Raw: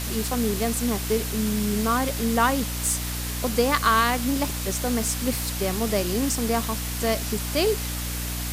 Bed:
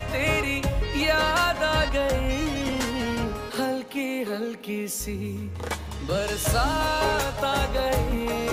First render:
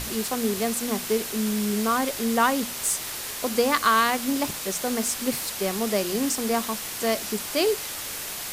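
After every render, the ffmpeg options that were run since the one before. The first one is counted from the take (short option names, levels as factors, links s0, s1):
-af "bandreject=f=60:t=h:w=6,bandreject=f=120:t=h:w=6,bandreject=f=180:t=h:w=6,bandreject=f=240:t=h:w=6,bandreject=f=300:t=h:w=6"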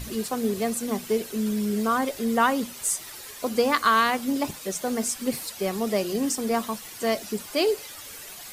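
-af "afftdn=nr=11:nf=-34"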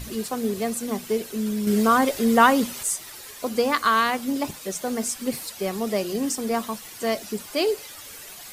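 -filter_complex "[0:a]asplit=3[s0][s1][s2];[s0]atrim=end=1.672[s3];[s1]atrim=start=1.668:end=2.832,asetpts=PTS-STARTPTS,volume=1.88[s4];[s2]atrim=start=2.828[s5];[s3][s4]acrossfade=d=0.004:c1=hsin:c2=hsin[s6];[s6][s5]acrossfade=d=0.004:c1=hsin:c2=hsin"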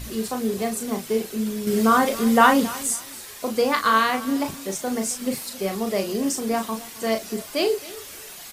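-filter_complex "[0:a]asplit=2[s0][s1];[s1]adelay=36,volume=0.501[s2];[s0][s2]amix=inputs=2:normalize=0,aecho=1:1:270|540:0.119|0.0297"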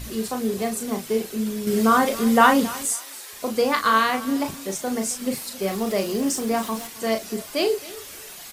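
-filter_complex "[0:a]asettb=1/sr,asplit=3[s0][s1][s2];[s0]atrim=end=2.854[s3];[s1]atrim=start=2.85:end=3.33,asetpts=PTS-STARTPTS,afade=t=in:d=0.004:c=qsin,afade=t=out:st=0.476:d=0.004:c=qsin,highpass=450[s4];[s2]atrim=start=3.326[s5];[s3][s4]acrossfade=d=0.004:c1=hsin:c2=qsin[s6];[s6][s5]acrossfade=d=0.004:c1=qsin:c2=hsin,asettb=1/sr,asplit=3[s7][s8][s9];[s7]atrim=end=5.624[s10];[s8]atrim=start=5.62:end=6.87,asetpts=PTS-STARTPTS,afade=t=in:d=0.004:c=qsin,afade=t=out:st=1.246:d=0.004:c=qsin,aeval=exprs='val(0)+0.5*0.0141*sgn(val(0))':c=same[s11];[s9]atrim=start=6.866[s12];[s10][s11]acrossfade=d=0.004:c1=hsin:c2=qsin[s13];[s13][s12]acrossfade=d=0.004:c1=qsin:c2=hsin"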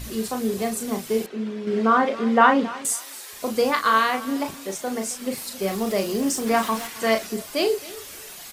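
-filter_complex "[0:a]asettb=1/sr,asplit=3[s0][s1][s2];[s0]atrim=end=1.264[s3];[s1]atrim=start=1.26:end=2.85,asetpts=PTS-STARTPTS,afade=t=in:d=0.004:c=qsin,afade=t=out:st=1.586:d=0.004:c=qsin,highpass=220,lowpass=2700[s4];[s2]atrim=start=2.846[s5];[s3][s4]acrossfade=d=0.004:c1=hsin:c2=qsin[s6];[s6][s5]acrossfade=d=0.004:c1=qsin:c2=hsin,asettb=1/sr,asplit=3[s7][s8][s9];[s7]atrim=end=3.704[s10];[s8]atrim=start=3.7:end=5.38,asetpts=PTS-STARTPTS,afade=t=in:d=0.004:c=qsin,afade=t=out:st=1.676:d=0.004:c=qsin,bass=f=250:g=-6,treble=f=4000:g=-3[s11];[s9]atrim=start=5.376[s12];[s10][s11]acrossfade=d=0.004:c1=hsin:c2=qsin[s13];[s13][s12]acrossfade=d=0.004:c1=qsin:c2=hsin,asettb=1/sr,asplit=3[s14][s15][s16];[s14]atrim=end=6.464[s17];[s15]atrim=start=6.46:end=7.27,asetpts=PTS-STARTPTS,afade=t=in:d=0.004:c=qsin,afade=t=out:st=0.806:d=0.004:c=qsin,equalizer=f=1600:w=0.59:g=7.5[s18];[s16]atrim=start=7.266[s19];[s17][s18]acrossfade=d=0.004:c1=hsin:c2=qsin[s20];[s20][s19]acrossfade=d=0.004:c1=qsin:c2=hsin"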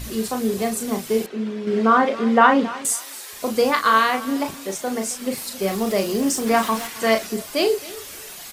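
-af "volume=1.33,alimiter=limit=0.794:level=0:latency=1"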